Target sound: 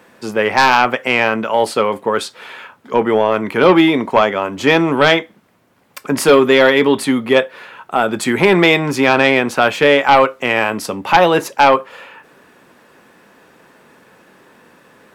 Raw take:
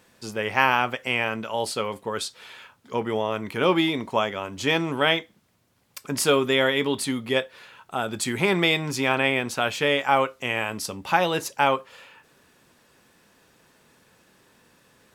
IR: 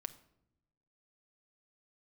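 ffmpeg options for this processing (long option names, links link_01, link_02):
-filter_complex "[0:a]highshelf=frequency=10000:gain=4,acrossover=split=170|2500[link_01][link_02][link_03];[link_02]aeval=exprs='0.562*sin(PI/2*2.51*val(0)/0.562)':channel_layout=same[link_04];[link_01][link_04][link_03]amix=inputs=3:normalize=0,volume=1.5dB"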